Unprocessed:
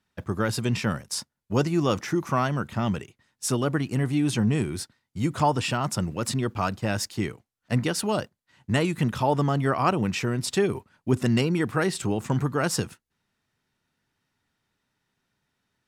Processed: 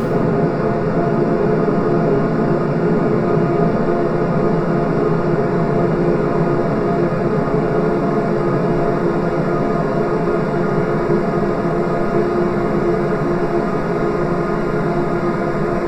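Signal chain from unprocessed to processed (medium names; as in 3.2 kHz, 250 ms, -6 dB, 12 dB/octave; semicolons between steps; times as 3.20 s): comb filter that takes the minimum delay 4.8 ms; peak limiter -20.5 dBFS, peak gain reduction 10 dB; boxcar filter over 14 samples; Paulstretch 47×, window 1.00 s, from 1.71 s; gated-style reverb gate 260 ms falling, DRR -5.5 dB; trim +8.5 dB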